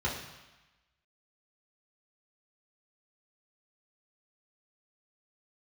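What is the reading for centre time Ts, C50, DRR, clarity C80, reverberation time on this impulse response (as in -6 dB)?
43 ms, 5.0 dB, -5.0 dB, 7.5 dB, 1.1 s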